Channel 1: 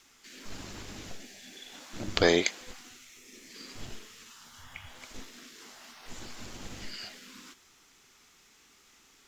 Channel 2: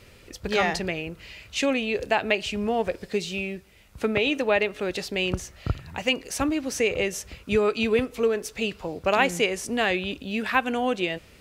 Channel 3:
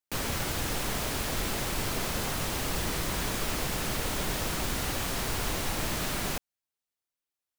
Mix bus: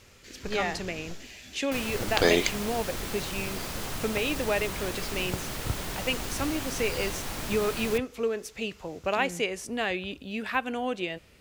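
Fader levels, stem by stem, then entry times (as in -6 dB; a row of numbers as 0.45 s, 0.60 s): +0.5 dB, -5.5 dB, -4.0 dB; 0.00 s, 0.00 s, 1.60 s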